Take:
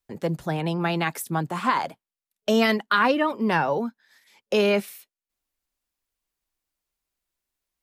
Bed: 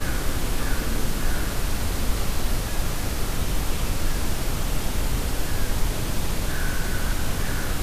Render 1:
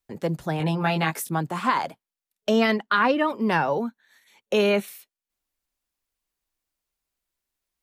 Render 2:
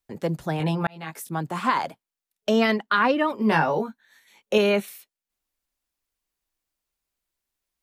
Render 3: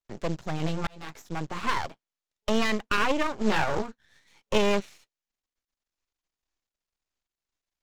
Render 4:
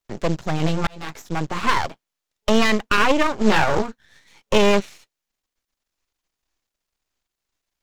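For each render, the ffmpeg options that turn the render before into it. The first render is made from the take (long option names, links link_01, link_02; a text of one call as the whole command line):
ffmpeg -i in.wav -filter_complex "[0:a]asettb=1/sr,asplit=3[link_01][link_02][link_03];[link_01]atrim=end=0.584[link_04];[link_02]atrim=start=0.58:end=1.29,asetpts=PTS-STARTPTS,afade=type=in:duration=0.004:curve=qsin,afade=type=out:start_time=0.706:duration=0.004:curve=qsin,asplit=2[link_05][link_06];[link_06]adelay=19,volume=-3.5dB[link_07];[link_05][link_07]amix=inputs=2:normalize=0,atrim=end_sample=31311[link_08];[link_03]atrim=start=1.286[link_09];[link_04][link_08]acrossfade=duration=0.004:curve1=hsin:curve2=qsin[link_10];[link_10][link_09]acrossfade=duration=0.004:curve1=qsin:curve2=hsin,asettb=1/sr,asplit=3[link_11][link_12][link_13];[link_11]atrim=end=2.494[link_14];[link_12]atrim=start=2.49:end=3.19,asetpts=PTS-STARTPTS,afade=type=in:duration=0.004:curve=qsin,afade=type=out:start_time=0.696:duration=0.004:curve=qsin,lowpass=frequency=4000:poles=1[link_15];[link_13]atrim=start=3.186[link_16];[link_14][link_15]acrossfade=duration=0.004:curve1=hsin:curve2=qsin[link_17];[link_17][link_16]acrossfade=duration=0.004:curve1=qsin:curve2=hsin,asettb=1/sr,asplit=3[link_18][link_19][link_20];[link_18]atrim=end=3.794[link_21];[link_19]atrim=start=3.79:end=4.88,asetpts=PTS-STARTPTS,afade=type=in:duration=0.004:curve=qsin,afade=type=out:start_time=1.086:duration=0.004:curve=qsin,asuperstop=centerf=5000:order=20:qfactor=6.2[link_22];[link_20]atrim=start=4.876[link_23];[link_21][link_22]acrossfade=duration=0.004:curve1=hsin:curve2=qsin[link_24];[link_24][link_23]acrossfade=duration=0.004:curve1=qsin:curve2=hsin" out.wav
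ffmpeg -i in.wav -filter_complex "[0:a]asettb=1/sr,asplit=3[link_01][link_02][link_03];[link_01]atrim=end=3.364[link_04];[link_02]atrim=start=3.36:end=4.58,asetpts=PTS-STARTPTS,afade=type=in:duration=0.004:curve=qsin,afade=type=out:start_time=1.216:duration=0.004:curve=qsin,asplit=2[link_05][link_06];[link_06]adelay=19,volume=-4dB[link_07];[link_05][link_07]amix=inputs=2:normalize=0,atrim=end_sample=53802[link_08];[link_03]atrim=start=4.576[link_09];[link_04][link_08]acrossfade=duration=0.004:curve1=hsin:curve2=qsin[link_10];[link_10][link_09]acrossfade=duration=0.004:curve1=qsin:curve2=hsin,asplit=2[link_11][link_12];[link_11]atrim=end=0.87,asetpts=PTS-STARTPTS,afade=type=out:start_time=0.866:duration=0.004:curve=hsin[link_13];[link_12]atrim=start=0.87,asetpts=PTS-STARTPTS,afade=type=in:duration=0.69[link_14];[link_13][link_14]concat=n=2:v=0:a=1" out.wav
ffmpeg -i in.wav -af "aresample=16000,acrusher=bits=5:mode=log:mix=0:aa=0.000001,aresample=44100,aeval=exprs='max(val(0),0)':channel_layout=same" out.wav
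ffmpeg -i in.wav -af "volume=8dB,alimiter=limit=-3dB:level=0:latency=1" out.wav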